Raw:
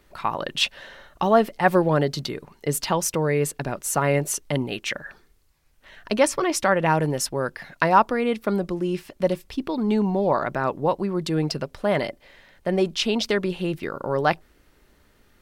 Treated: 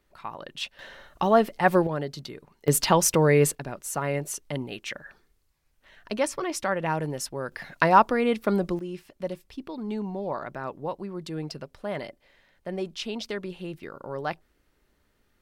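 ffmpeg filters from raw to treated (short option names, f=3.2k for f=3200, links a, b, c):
-af "asetnsamples=n=441:p=0,asendcmd='0.79 volume volume -2dB;1.87 volume volume -9.5dB;2.68 volume volume 3dB;3.55 volume volume -7dB;7.52 volume volume -0.5dB;8.79 volume volume -10dB',volume=-11.5dB"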